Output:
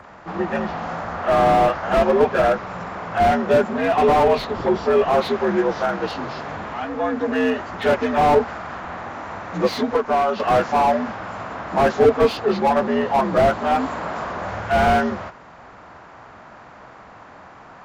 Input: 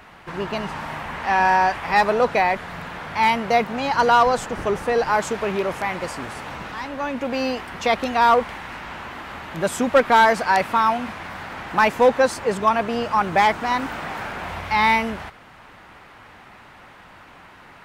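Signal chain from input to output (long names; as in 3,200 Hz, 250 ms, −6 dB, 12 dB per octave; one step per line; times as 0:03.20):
partials spread apart or drawn together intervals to 82%
0:09.76–0:10.40: downward compressor 3 to 1, threshold −23 dBFS, peak gain reduction 9.5 dB
slew-rate limiting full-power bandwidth 91 Hz
level +5 dB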